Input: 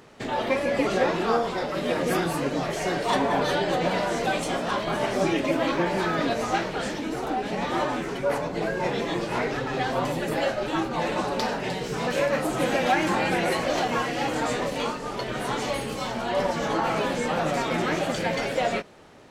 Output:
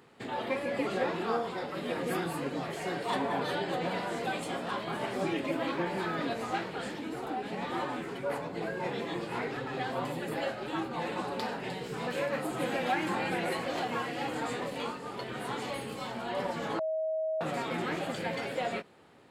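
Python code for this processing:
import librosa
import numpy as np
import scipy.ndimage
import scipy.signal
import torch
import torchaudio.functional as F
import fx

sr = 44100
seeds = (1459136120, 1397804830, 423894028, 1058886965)

y = fx.edit(x, sr, fx.bleep(start_s=16.79, length_s=0.62, hz=635.0, db=-18.0), tone=tone)
y = scipy.signal.sosfilt(scipy.signal.butter(2, 85.0, 'highpass', fs=sr, output='sos'), y)
y = fx.peak_eq(y, sr, hz=5900.0, db=-10.5, octaves=0.3)
y = fx.notch(y, sr, hz=610.0, q=12.0)
y = y * librosa.db_to_amplitude(-7.5)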